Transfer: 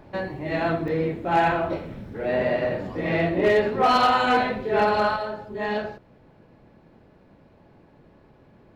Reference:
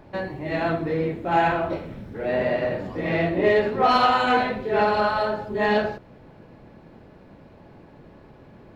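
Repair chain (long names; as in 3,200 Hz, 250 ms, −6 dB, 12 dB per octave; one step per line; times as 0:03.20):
clipped peaks rebuilt −12.5 dBFS
repair the gap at 0:00.88, 2.3 ms
level 0 dB, from 0:05.16 +6 dB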